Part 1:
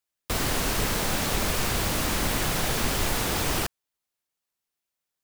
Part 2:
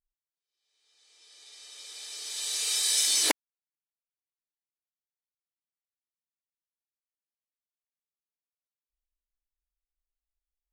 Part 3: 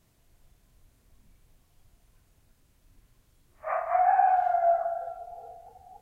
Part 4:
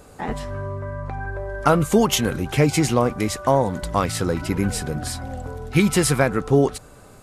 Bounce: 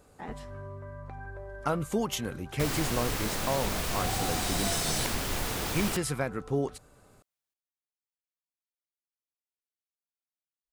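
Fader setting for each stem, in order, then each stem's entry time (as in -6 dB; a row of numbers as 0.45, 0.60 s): -6.0, -9.0, -16.0, -12.5 dB; 2.30, 1.75, 0.00, 0.00 s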